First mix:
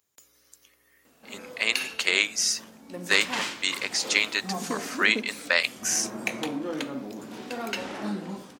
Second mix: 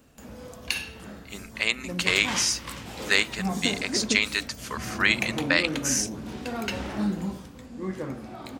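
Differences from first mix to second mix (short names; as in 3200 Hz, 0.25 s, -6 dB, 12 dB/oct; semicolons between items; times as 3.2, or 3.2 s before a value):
background: entry -1.05 s; master: remove HPF 260 Hz 12 dB/oct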